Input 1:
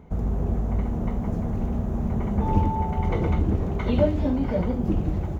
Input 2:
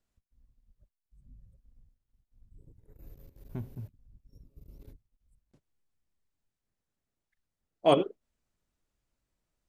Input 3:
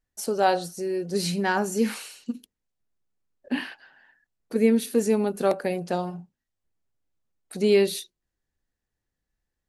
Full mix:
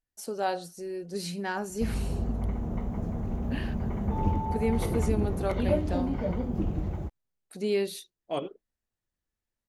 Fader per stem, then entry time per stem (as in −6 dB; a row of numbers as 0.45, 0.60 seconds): −5.5, −9.5, −8.0 decibels; 1.70, 0.45, 0.00 seconds